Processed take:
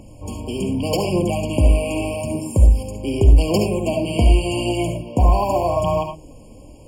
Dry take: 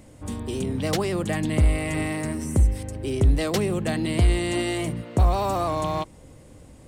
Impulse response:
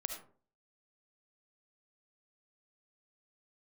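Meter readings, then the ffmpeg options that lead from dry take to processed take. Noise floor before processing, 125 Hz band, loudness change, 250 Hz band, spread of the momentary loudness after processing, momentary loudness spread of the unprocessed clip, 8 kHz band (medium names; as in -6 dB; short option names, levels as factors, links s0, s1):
-49 dBFS, +5.0 dB, +5.5 dB, +4.0 dB, 10 LU, 8 LU, +2.0 dB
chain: -filter_complex "[0:a]aphaser=in_gain=1:out_gain=1:delay=4.9:decay=0.4:speed=0.85:type=triangular,bandreject=f=77.39:t=h:w=4,bandreject=f=154.78:t=h:w=4,bandreject=f=232.17:t=h:w=4,bandreject=f=309.56:t=h:w=4,bandreject=f=386.95:t=h:w=4,bandreject=f=464.34:t=h:w=4[s0];[1:a]atrim=start_sample=2205,afade=t=out:st=0.17:d=0.01,atrim=end_sample=7938[s1];[s0][s1]afir=irnorm=-1:irlink=0,afftfilt=real='re*eq(mod(floor(b*sr/1024/1100),2),0)':imag='im*eq(mod(floor(b*sr/1024/1100),2),0)':win_size=1024:overlap=0.75,volume=1.88"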